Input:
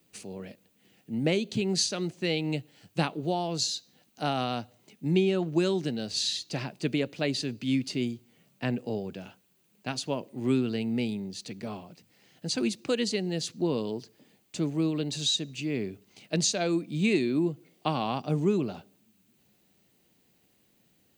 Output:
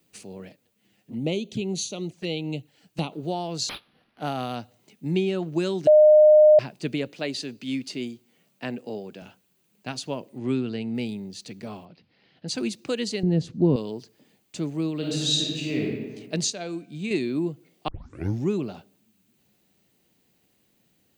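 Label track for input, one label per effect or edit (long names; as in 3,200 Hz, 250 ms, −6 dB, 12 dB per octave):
0.490000	3.120000	flanger swept by the level delay at rest 10.2 ms, full sweep at −27 dBFS
3.690000	4.560000	linearly interpolated sample-rate reduction rate divided by 6×
5.870000	6.590000	beep over 610 Hz −10 dBFS
7.110000	9.220000	Bessel high-pass filter 220 Hz
10.380000	10.950000	high-frequency loss of the air 62 metres
11.850000	12.480000	Butterworth low-pass 4,800 Hz 48 dB per octave
13.230000	13.760000	spectral tilt −4.5 dB per octave
14.980000	15.830000	thrown reverb, RT60 1.4 s, DRR −3.5 dB
16.500000	17.110000	tuned comb filter 140 Hz, decay 0.91 s, mix 50%
17.880000	17.880000	tape start 0.62 s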